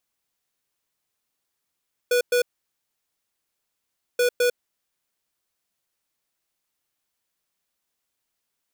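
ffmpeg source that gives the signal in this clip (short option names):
-f lavfi -i "aevalsrc='0.106*(2*lt(mod(489*t,1),0.5)-1)*clip(min(mod(mod(t,2.08),0.21),0.1-mod(mod(t,2.08),0.21))/0.005,0,1)*lt(mod(t,2.08),0.42)':d=4.16:s=44100"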